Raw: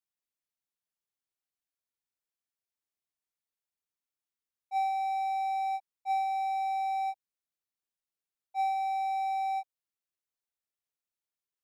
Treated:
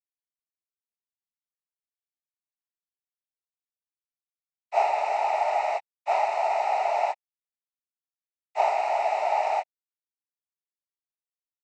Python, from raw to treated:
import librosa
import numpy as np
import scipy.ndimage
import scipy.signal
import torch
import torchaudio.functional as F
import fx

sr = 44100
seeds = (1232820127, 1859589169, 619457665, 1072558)

y = np.sign(x) * np.maximum(np.abs(x) - 10.0 ** (-48.5 / 20.0), 0.0)
y = fx.noise_vocoder(y, sr, seeds[0], bands=12)
y = y * librosa.db_to_amplitude(7.0)